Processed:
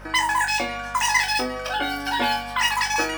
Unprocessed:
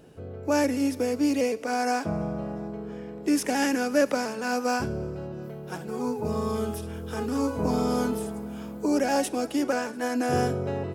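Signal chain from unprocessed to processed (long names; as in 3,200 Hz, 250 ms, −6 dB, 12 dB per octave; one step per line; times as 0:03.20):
high-shelf EQ 4,000 Hz −6.5 dB
on a send: flutter between parallel walls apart 11.9 metres, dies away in 0.81 s
on the sum: change of speed 3.45×
dynamic equaliser 1,200 Hz, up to −6 dB, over −35 dBFS, Q 0.87
mains hum 50 Hz, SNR 19 dB
level +6.5 dB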